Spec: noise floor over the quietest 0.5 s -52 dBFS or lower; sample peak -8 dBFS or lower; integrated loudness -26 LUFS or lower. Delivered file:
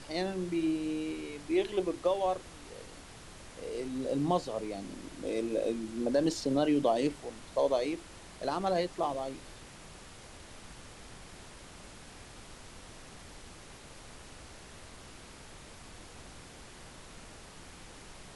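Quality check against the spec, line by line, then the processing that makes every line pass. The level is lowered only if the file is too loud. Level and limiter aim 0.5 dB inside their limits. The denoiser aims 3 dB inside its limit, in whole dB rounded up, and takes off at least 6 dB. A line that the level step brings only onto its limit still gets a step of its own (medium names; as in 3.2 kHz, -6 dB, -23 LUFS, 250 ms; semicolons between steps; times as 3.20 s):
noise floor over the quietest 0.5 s -50 dBFS: fail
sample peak -16.5 dBFS: pass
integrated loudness -32.5 LUFS: pass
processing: noise reduction 6 dB, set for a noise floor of -50 dBFS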